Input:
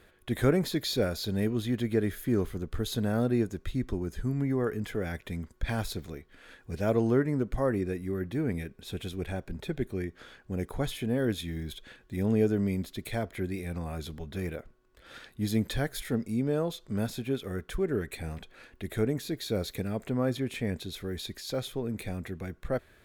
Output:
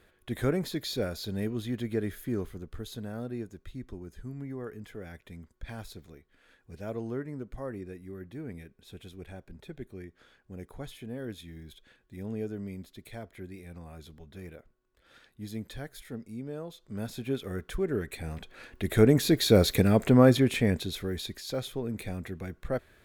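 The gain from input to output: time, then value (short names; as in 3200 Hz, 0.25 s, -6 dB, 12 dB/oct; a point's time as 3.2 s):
2.17 s -3.5 dB
3.11 s -10 dB
16.72 s -10 dB
17.3 s -0.5 dB
18.24 s -0.5 dB
19.25 s +10.5 dB
20.2 s +10.5 dB
21.41 s -0.5 dB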